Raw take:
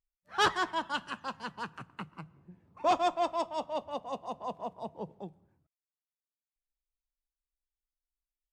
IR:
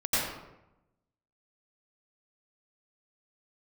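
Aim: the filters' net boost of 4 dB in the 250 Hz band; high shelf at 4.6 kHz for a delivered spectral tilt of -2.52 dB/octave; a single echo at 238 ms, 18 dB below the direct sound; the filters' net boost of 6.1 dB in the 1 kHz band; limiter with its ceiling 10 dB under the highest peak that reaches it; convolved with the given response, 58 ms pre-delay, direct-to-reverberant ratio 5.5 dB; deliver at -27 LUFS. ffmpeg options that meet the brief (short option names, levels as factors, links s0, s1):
-filter_complex "[0:a]equalizer=f=250:t=o:g=5,equalizer=f=1000:t=o:g=7.5,highshelf=f=4600:g=3.5,alimiter=limit=0.0891:level=0:latency=1,aecho=1:1:238:0.126,asplit=2[s0][s1];[1:a]atrim=start_sample=2205,adelay=58[s2];[s1][s2]afir=irnorm=-1:irlink=0,volume=0.15[s3];[s0][s3]amix=inputs=2:normalize=0,volume=1.78"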